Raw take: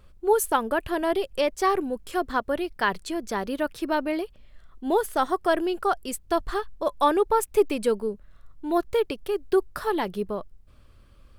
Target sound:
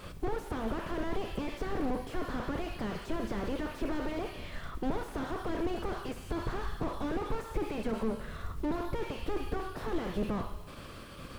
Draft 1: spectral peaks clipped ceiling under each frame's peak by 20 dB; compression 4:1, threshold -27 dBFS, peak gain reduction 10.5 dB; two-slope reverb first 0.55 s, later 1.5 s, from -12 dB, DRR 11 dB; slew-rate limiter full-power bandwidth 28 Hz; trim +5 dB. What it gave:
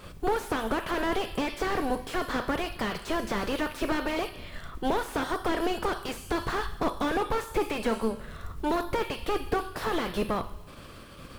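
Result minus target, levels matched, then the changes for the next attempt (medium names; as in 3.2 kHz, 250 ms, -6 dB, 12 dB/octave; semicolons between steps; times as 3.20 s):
slew-rate limiter: distortion -7 dB
change: slew-rate limiter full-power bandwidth 7.5 Hz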